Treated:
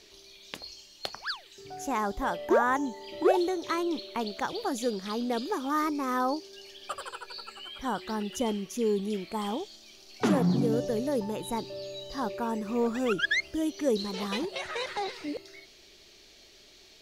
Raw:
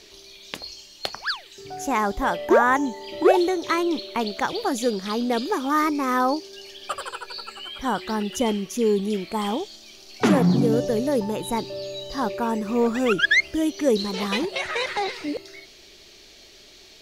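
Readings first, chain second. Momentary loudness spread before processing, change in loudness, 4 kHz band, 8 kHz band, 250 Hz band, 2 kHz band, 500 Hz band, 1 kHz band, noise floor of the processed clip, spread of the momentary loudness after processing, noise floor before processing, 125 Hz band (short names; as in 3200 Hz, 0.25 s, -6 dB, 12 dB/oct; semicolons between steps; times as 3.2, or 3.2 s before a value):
16 LU, -7.0 dB, -7.0 dB, -6.5 dB, -6.5 dB, -8.5 dB, -6.5 dB, -7.0 dB, -55 dBFS, 15 LU, -49 dBFS, -6.5 dB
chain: dynamic EQ 2200 Hz, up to -4 dB, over -38 dBFS, Q 2.1; gain -6.5 dB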